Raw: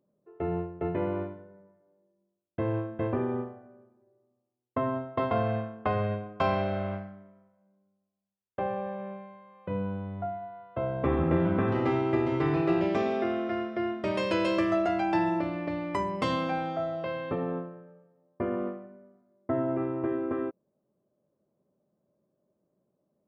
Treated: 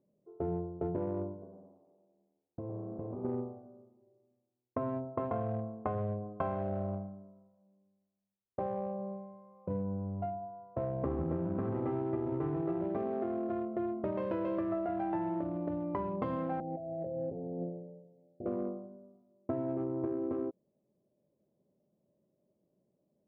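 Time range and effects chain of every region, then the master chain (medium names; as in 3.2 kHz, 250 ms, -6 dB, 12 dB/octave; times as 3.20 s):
1.31–3.25 s: compression, threshold -37 dBFS + frequency-shifting echo 109 ms, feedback 39%, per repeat +80 Hz, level -8.5 dB
16.60–18.46 s: steep low-pass 810 Hz 96 dB/octave + compressor with a negative ratio -37 dBFS
whole clip: local Wiener filter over 25 samples; low-pass 1.2 kHz 12 dB/octave; compression, threshold -31 dBFS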